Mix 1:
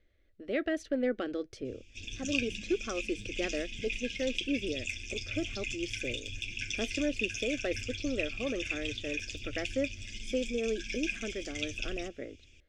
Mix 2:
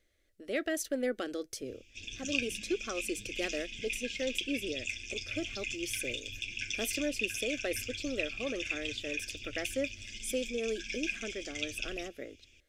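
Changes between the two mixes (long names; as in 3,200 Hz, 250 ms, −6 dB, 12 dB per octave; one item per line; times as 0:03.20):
speech: remove low-pass filter 3,300 Hz 12 dB per octave
master: add low-shelf EQ 270 Hz −7 dB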